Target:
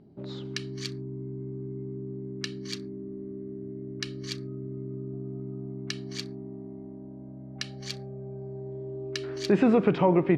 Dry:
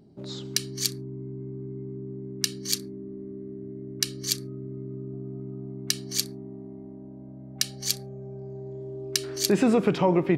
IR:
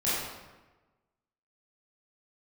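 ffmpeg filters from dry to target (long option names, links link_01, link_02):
-af "lowpass=2800"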